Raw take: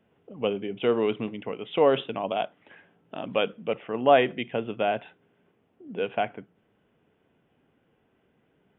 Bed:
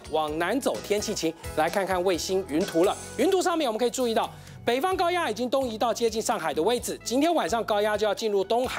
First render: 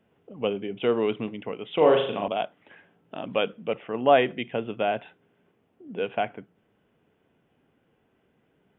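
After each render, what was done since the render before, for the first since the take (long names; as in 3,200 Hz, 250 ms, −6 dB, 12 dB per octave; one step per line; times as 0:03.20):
0:01.75–0:02.28: flutter between parallel walls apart 6.7 metres, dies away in 0.55 s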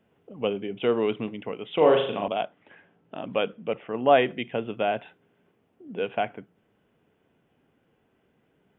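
0:02.42–0:04.11: high-frequency loss of the air 130 metres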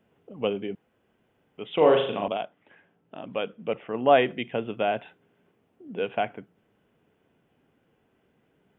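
0:00.75–0:01.58: fill with room tone
0:02.37–0:03.59: clip gain −4 dB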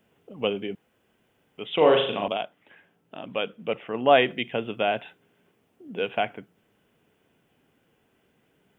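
high-shelf EQ 2,700 Hz +10 dB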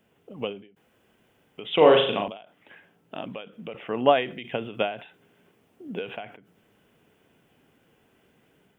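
automatic gain control gain up to 4 dB
every ending faded ahead of time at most 120 dB per second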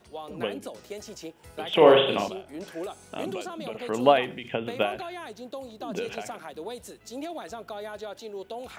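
mix in bed −13 dB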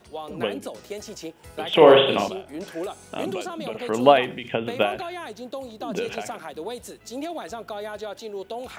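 level +4 dB
brickwall limiter −1 dBFS, peak gain reduction 2 dB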